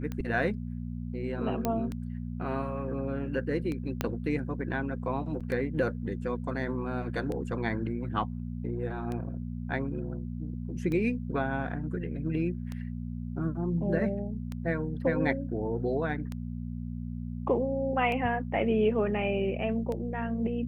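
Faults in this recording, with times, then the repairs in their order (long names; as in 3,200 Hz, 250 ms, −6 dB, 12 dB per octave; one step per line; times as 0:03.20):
mains hum 60 Hz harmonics 4 −36 dBFS
scratch tick 33 1/3 rpm −23 dBFS
0:01.65: click −14 dBFS
0:04.01: click −13 dBFS
0:05.40–0:05.41: drop-out 6.2 ms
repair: click removal
hum removal 60 Hz, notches 4
repair the gap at 0:05.40, 6.2 ms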